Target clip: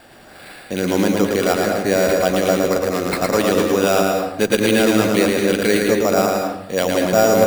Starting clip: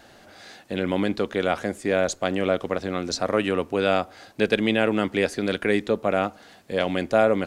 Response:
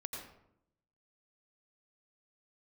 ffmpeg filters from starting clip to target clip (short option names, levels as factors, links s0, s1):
-filter_complex "[0:a]acrusher=samples=7:mix=1:aa=0.000001,bandreject=f=50.27:t=h:w=4,bandreject=f=100.54:t=h:w=4,asoftclip=type=hard:threshold=0.251,asplit=2[s0][s1];[1:a]atrim=start_sample=2205,adelay=112[s2];[s1][s2]afir=irnorm=-1:irlink=0,volume=1.06[s3];[s0][s3]amix=inputs=2:normalize=0,volume=1.68"